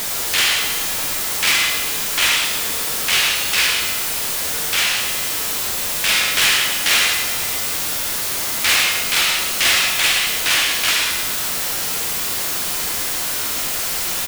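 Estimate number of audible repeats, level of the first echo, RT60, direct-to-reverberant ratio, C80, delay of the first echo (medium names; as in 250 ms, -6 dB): 1, -8.0 dB, 1.6 s, 2.0 dB, 4.5 dB, 108 ms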